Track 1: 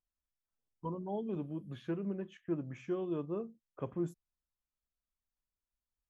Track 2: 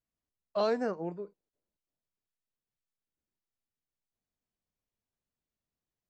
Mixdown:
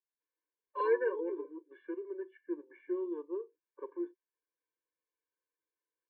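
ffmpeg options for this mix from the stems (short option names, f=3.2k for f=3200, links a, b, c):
-filter_complex "[0:a]volume=-1.5dB[a];[1:a]aecho=1:1:3.9:0.95,adelay=200,volume=0dB[b];[a][b]amix=inputs=2:normalize=0,highpass=f=360:w=0.5412,highpass=f=360:w=1.3066,equalizer=f=380:t=q:w=4:g=7,equalizer=f=560:t=q:w=4:g=-7,equalizer=f=840:t=q:w=4:g=6,equalizer=f=1.2k:t=q:w=4:g=-4,equalizer=f=1.9k:t=q:w=4:g=6,lowpass=f=2.1k:w=0.5412,lowpass=f=2.1k:w=1.3066,afftfilt=real='re*eq(mod(floor(b*sr/1024/300),2),1)':imag='im*eq(mod(floor(b*sr/1024/300),2),1)':win_size=1024:overlap=0.75"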